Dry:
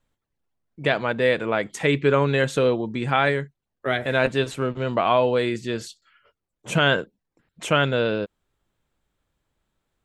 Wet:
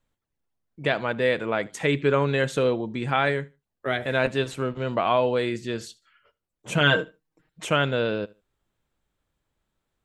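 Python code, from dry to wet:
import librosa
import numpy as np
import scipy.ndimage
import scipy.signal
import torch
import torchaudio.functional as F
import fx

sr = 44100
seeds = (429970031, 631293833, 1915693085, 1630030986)

p1 = fx.comb(x, sr, ms=6.4, depth=0.81, at=(6.8, 7.65))
p2 = p1 + fx.echo_feedback(p1, sr, ms=76, feedback_pct=21, wet_db=-23.0, dry=0)
y = p2 * 10.0 ** (-2.5 / 20.0)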